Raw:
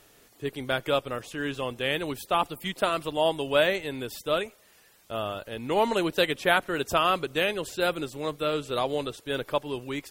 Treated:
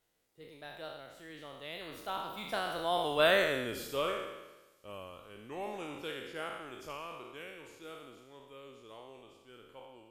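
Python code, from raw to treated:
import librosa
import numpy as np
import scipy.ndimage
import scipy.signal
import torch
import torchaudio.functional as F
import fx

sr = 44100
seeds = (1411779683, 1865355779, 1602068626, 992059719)

y = fx.spec_trails(x, sr, decay_s=1.16)
y = fx.doppler_pass(y, sr, speed_mps=37, closest_m=16.0, pass_at_s=3.42)
y = F.gain(torch.from_numpy(y), -5.0).numpy()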